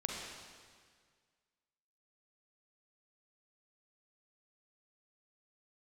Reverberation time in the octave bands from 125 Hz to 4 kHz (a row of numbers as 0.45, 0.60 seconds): 2.0, 1.9, 1.8, 1.8, 1.8, 1.7 seconds